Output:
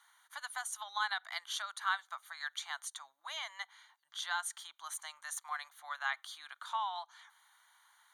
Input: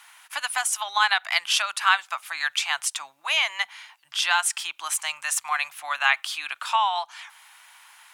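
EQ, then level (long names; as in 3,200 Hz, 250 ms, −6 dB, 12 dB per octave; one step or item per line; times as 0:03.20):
moving average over 17 samples
first difference
+5.5 dB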